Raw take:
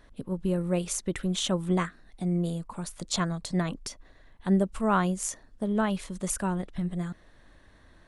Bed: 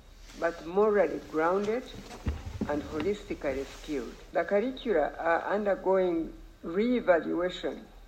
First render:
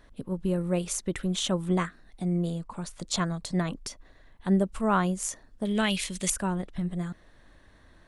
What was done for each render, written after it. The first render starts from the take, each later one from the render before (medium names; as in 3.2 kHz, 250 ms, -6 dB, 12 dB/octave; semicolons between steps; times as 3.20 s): 2.45–3.00 s: low-pass 8.5 kHz; 5.65–6.30 s: resonant high shelf 1.7 kHz +11 dB, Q 1.5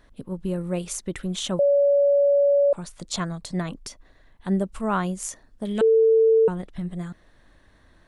1.59–2.73 s: bleep 567 Hz -15 dBFS; 5.81–6.48 s: bleep 447 Hz -13.5 dBFS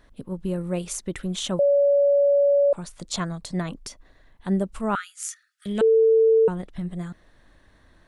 4.95–5.66 s: brick-wall FIR high-pass 1.2 kHz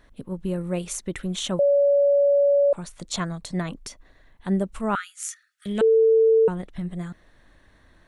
peaking EQ 2.1 kHz +2 dB; band-stop 4.9 kHz, Q 16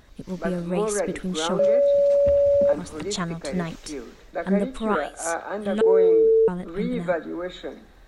add bed -1 dB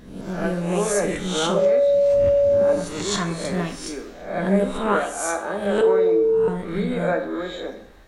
reverse spectral sustain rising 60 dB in 0.63 s; plate-style reverb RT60 0.55 s, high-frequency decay 0.8×, DRR 4.5 dB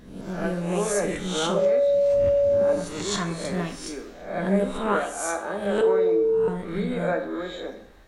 trim -3 dB